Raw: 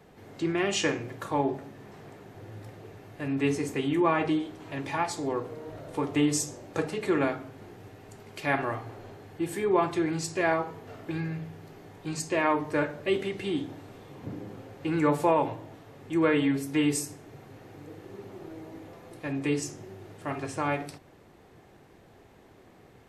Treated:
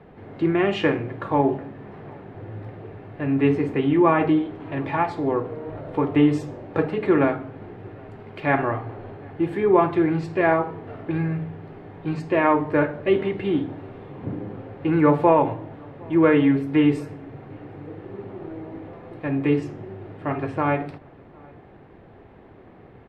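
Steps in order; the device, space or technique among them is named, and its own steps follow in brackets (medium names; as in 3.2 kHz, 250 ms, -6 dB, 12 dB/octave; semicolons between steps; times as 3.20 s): shout across a valley (distance through air 480 m; echo from a far wall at 130 m, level -27 dB); trim +8.5 dB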